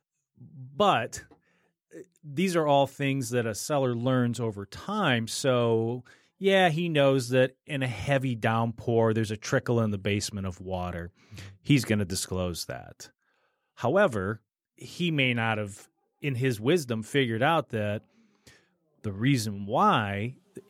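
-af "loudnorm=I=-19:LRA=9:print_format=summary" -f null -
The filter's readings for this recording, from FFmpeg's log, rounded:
Input Integrated:    -27.2 LUFS
Input True Peak:     -10.0 dBTP
Input LRA:             4.2 LU
Input Threshold:     -38.2 LUFS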